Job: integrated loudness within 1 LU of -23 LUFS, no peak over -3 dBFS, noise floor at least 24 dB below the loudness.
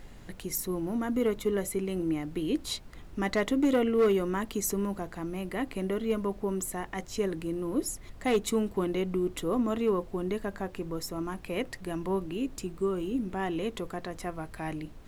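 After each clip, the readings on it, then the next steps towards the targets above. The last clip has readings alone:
clipped 0.3%; flat tops at -19.0 dBFS; noise floor -48 dBFS; noise floor target -55 dBFS; loudness -31.0 LUFS; peak -19.0 dBFS; loudness target -23.0 LUFS
-> clip repair -19 dBFS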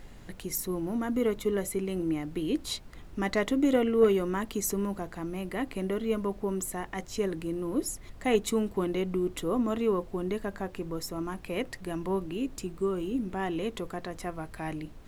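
clipped 0.0%; noise floor -48 dBFS; noise floor target -55 dBFS
-> noise print and reduce 7 dB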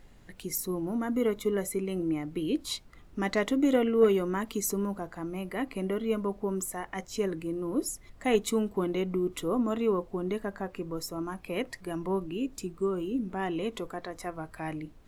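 noise floor -54 dBFS; noise floor target -55 dBFS
-> noise print and reduce 6 dB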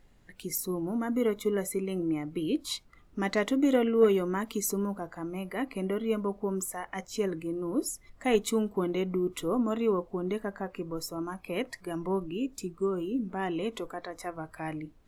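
noise floor -59 dBFS; loudness -31.0 LUFS; peak -11.5 dBFS; loudness target -23.0 LUFS
-> gain +8 dB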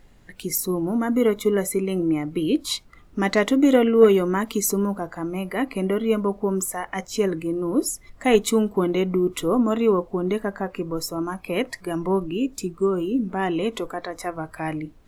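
loudness -23.0 LUFS; peak -3.5 dBFS; noise floor -51 dBFS

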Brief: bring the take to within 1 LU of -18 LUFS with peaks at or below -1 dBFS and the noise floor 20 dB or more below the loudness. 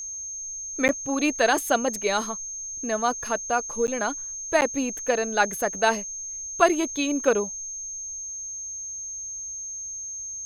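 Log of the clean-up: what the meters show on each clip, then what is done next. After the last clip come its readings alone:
dropouts 3; longest dropout 9.4 ms; steady tone 6400 Hz; tone level -32 dBFS; loudness -26.0 LUFS; peak -4.0 dBFS; loudness target -18.0 LUFS
-> interpolate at 0.88/3.87/4.61, 9.4 ms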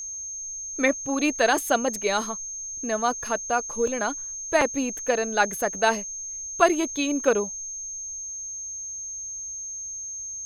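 dropouts 0; steady tone 6400 Hz; tone level -32 dBFS
-> notch 6400 Hz, Q 30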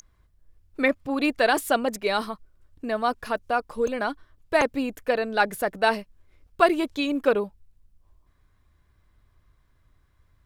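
steady tone none; loudness -25.0 LUFS; peak -4.0 dBFS; loudness target -18.0 LUFS
-> gain +7 dB; limiter -1 dBFS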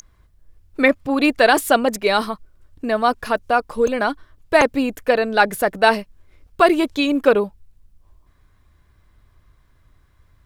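loudness -18.5 LUFS; peak -1.0 dBFS; noise floor -57 dBFS

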